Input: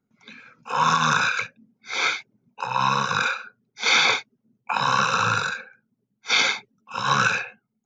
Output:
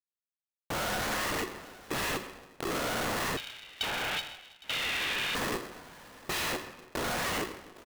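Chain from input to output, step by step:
comparator with hysteresis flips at −25 dBFS
single-tap delay 811 ms −20 dB
convolution reverb RT60 1.2 s, pre-delay 39 ms, DRR 8.5 dB
0:03.37–0:05.35: voice inversion scrambler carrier 3,400 Hz
ring modulator with a square carrier 370 Hz
level −7.5 dB

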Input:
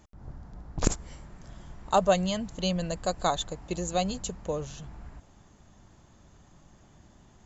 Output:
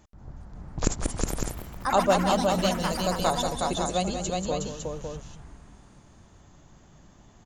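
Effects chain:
multi-tap delay 186/365/556 ms −9/−3.5/−6 dB
delay with pitch and tempo change per echo 408 ms, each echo +5 semitones, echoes 3, each echo −6 dB

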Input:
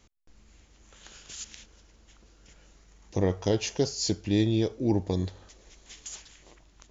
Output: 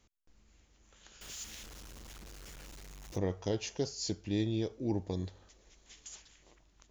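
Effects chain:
0:01.21–0:03.18: converter with a step at zero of −37 dBFS
level −8 dB

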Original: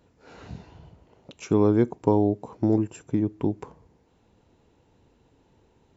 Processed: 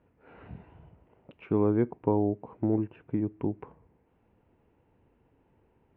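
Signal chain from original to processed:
Butterworth low-pass 2,700 Hz 36 dB per octave
level −5 dB

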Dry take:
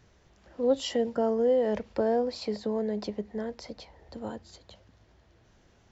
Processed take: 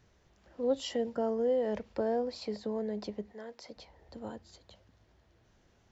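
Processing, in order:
0:03.32–0:03.75: high-pass filter 990 Hz → 250 Hz 6 dB per octave
level −5 dB

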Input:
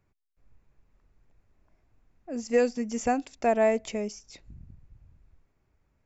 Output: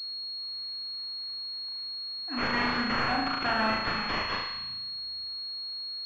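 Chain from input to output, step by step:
phase distortion by the signal itself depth 0.14 ms
elliptic band-stop filter 310–800 Hz
first difference
downward compressor, threshold −47 dBFS, peak gain reduction 10.5 dB
sine wavefolder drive 14 dB, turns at −29.5 dBFS
on a send: flutter between parallel walls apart 6.3 metres, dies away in 0.96 s
on the sum: switching amplifier with a slow clock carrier 4,300 Hz
level +8.5 dB

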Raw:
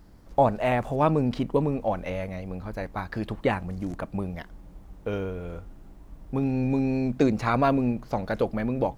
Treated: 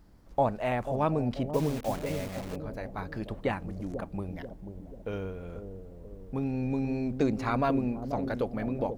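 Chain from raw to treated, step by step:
0:01.51–0:02.56: bit-depth reduction 6 bits, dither none
0:04.28–0:05.08: notch filter 1,200 Hz, Q 8
bucket-brigade delay 488 ms, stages 2,048, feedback 52%, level −7.5 dB
level −5.5 dB

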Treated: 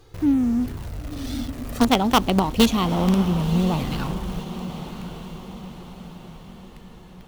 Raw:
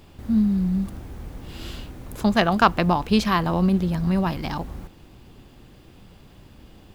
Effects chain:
gliding playback speed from 134% → 57%
flanger swept by the level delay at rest 2.6 ms, full sweep at −19.5 dBFS
in parallel at −11 dB: log-companded quantiser 2 bits
on the sum: feedback delay with all-pass diffusion 1,028 ms, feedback 50%, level −11.5 dB

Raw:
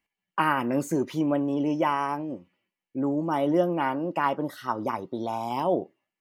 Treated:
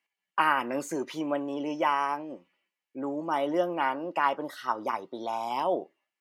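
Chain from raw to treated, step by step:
meter weighting curve A

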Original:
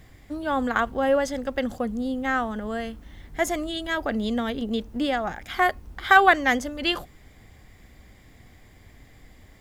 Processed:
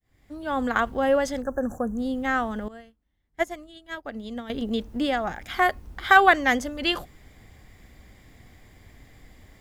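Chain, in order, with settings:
fade in at the beginning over 0.68 s
0:01.42–0:01.98: linear-phase brick-wall band-stop 1,800–5,700 Hz
0:02.68–0:04.50: expander for the loud parts 2.5 to 1, over −40 dBFS

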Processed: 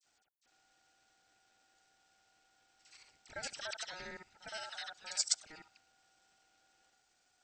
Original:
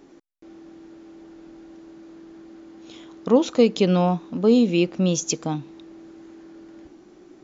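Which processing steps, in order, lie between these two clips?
reversed piece by piece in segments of 58 ms
first difference
all-pass dispersion lows, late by 56 ms, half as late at 2,400 Hz
ring modulation 1,100 Hz
level −1.5 dB

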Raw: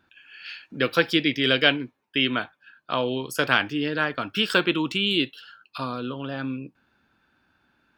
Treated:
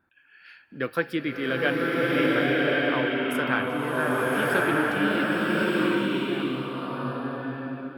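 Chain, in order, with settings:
flat-topped bell 4,300 Hz −11.5 dB
slow-attack reverb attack 1,240 ms, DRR −6 dB
level −5 dB

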